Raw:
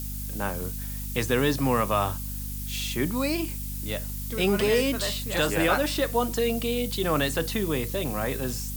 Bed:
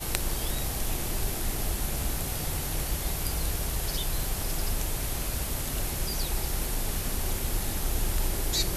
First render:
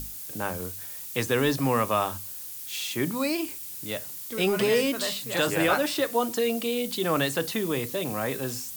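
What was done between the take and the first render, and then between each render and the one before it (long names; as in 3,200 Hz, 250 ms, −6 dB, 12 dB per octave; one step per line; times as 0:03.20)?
mains-hum notches 50/100/150/200/250 Hz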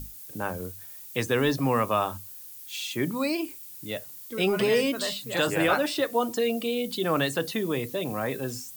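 broadband denoise 8 dB, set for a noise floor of −39 dBFS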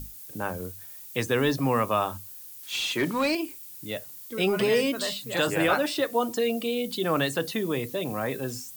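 0:02.63–0:03.35: mid-hump overdrive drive 16 dB, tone 3,400 Hz, clips at −16 dBFS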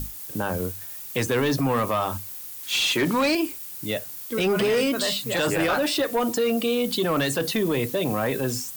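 leveller curve on the samples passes 2
brickwall limiter −16.5 dBFS, peak gain reduction 5.5 dB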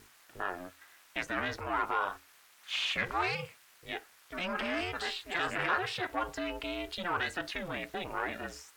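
resonant band-pass 1,500 Hz, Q 1.2
ring modulation 180 Hz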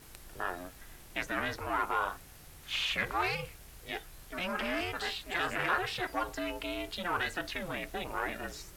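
mix in bed −22.5 dB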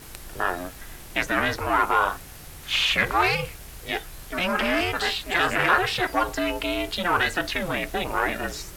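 level +10.5 dB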